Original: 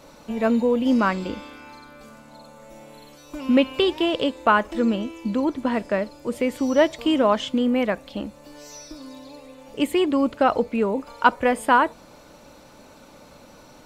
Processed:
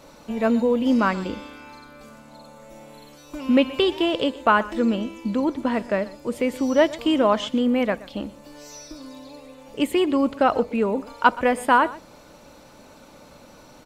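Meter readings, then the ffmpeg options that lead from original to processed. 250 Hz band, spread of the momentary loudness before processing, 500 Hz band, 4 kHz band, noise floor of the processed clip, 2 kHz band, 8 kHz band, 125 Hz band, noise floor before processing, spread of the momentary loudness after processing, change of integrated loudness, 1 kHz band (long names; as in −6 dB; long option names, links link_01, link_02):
0.0 dB, 18 LU, 0.0 dB, 0.0 dB, −48 dBFS, 0.0 dB, 0.0 dB, 0.0 dB, −49 dBFS, 20 LU, 0.0 dB, 0.0 dB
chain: -af "aecho=1:1:123:0.112"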